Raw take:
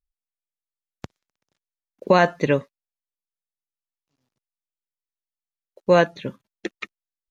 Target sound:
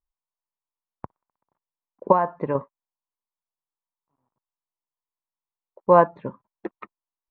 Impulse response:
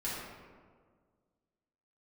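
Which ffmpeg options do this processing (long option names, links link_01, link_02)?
-filter_complex "[0:a]asettb=1/sr,asplit=3[link_01][link_02][link_03];[link_01]atrim=end=2.124[link_04];[link_02]atrim=start=2.12:end=2.55,asetpts=PTS-STARTPTS,afade=type=in:duration=0.004:curve=qsin,afade=type=out:start_time=0.426:duration=0.004:curve=qsin,acompressor=threshold=-22dB:ratio=3[link_05];[link_03]atrim=start=2.546[link_06];[link_04][link_05]acrossfade=duration=0.004:curve1=hsin:curve2=qsin[link_07];[link_07][link_06]acrossfade=duration=0.004:curve1=qsin:curve2=hsin,lowpass=frequency=1000:width_type=q:width=4.9,volume=-3dB"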